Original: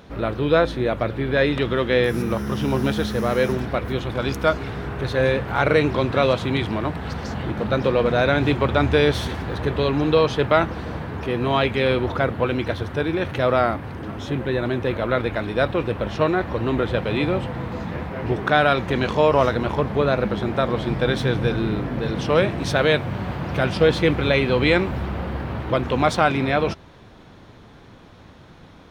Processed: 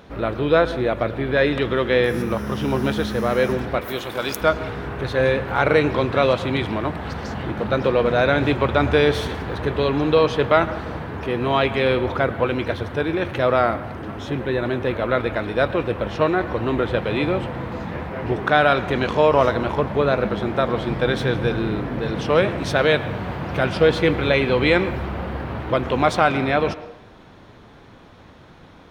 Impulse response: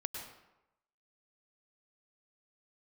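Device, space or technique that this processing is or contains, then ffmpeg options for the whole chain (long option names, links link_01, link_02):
filtered reverb send: -filter_complex "[0:a]asettb=1/sr,asplit=3[link_01][link_02][link_03];[link_01]atrim=end=3.814[link_04];[link_02]atrim=start=3.81:end=4.41,asetpts=PTS-STARTPTS,afade=type=in:duration=0.004:curve=qsin,afade=type=out:start_time=0.596:duration=0.004:curve=qsin,aemphasis=mode=production:type=bsi[link_05];[link_03]atrim=start=4.406[link_06];[link_04][link_05]acrossfade=duration=0.004:curve1=hsin:curve2=qsin[link_07];[link_07][link_06]acrossfade=duration=0.004:curve1=qsin:curve2=hsin,asplit=2[link_08][link_09];[link_09]highpass=230,lowpass=3900[link_10];[1:a]atrim=start_sample=2205[link_11];[link_10][link_11]afir=irnorm=-1:irlink=0,volume=-8.5dB[link_12];[link_08][link_12]amix=inputs=2:normalize=0,volume=-1dB"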